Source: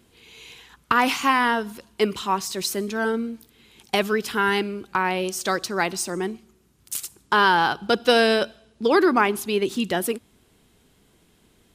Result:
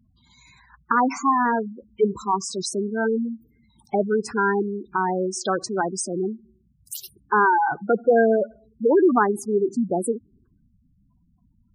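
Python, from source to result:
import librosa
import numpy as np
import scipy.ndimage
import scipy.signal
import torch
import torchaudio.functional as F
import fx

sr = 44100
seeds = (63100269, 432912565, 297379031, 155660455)

y = fx.env_phaser(x, sr, low_hz=390.0, high_hz=3300.0, full_db=-23.5)
y = fx.spec_gate(y, sr, threshold_db=-10, keep='strong')
y = y * 10.0 ** (2.5 / 20.0)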